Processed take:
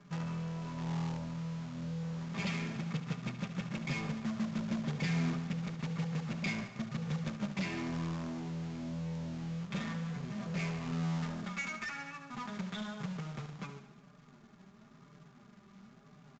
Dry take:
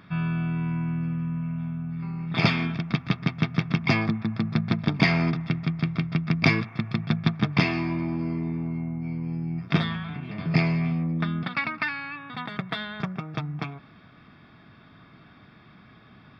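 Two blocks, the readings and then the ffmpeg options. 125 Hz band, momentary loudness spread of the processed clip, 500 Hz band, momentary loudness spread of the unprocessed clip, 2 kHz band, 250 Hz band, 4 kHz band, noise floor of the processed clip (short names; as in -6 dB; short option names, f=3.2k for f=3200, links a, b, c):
-11.0 dB, 8 LU, -11.0 dB, 10 LU, -13.0 dB, -10.5 dB, -12.5 dB, -59 dBFS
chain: -filter_complex "[0:a]aecho=1:1:5:0.94,acrossover=split=320|2000[a][b][c];[b]alimiter=level_in=1dB:limit=-24dB:level=0:latency=1,volume=-1dB[d];[a][d][c]amix=inputs=3:normalize=0,flanger=delay=6.7:depth=3.6:regen=16:speed=0.99:shape=sinusoidal,adynamicsmooth=sensitivity=3.5:basefreq=1.5k,asoftclip=type=tanh:threshold=-28dB,acrusher=bits=2:mode=log:mix=0:aa=0.000001,aecho=1:1:72|144|216|288|360|432|504:0.266|0.16|0.0958|0.0575|0.0345|0.0207|0.0124,aresample=16000,aresample=44100,volume=-5.5dB"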